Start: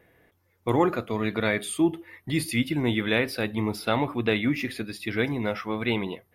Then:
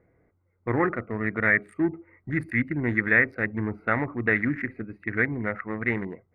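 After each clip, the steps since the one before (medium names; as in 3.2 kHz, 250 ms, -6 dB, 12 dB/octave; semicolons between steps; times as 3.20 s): local Wiener filter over 25 samples; FFT filter 100 Hz 0 dB, 950 Hz -4 dB, 1.9 kHz +15 dB, 3.1 kHz -22 dB, 6.6 kHz -20 dB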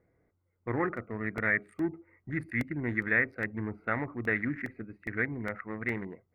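crackling interface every 0.41 s, samples 64, repeat, from 0.56 s; trim -6.5 dB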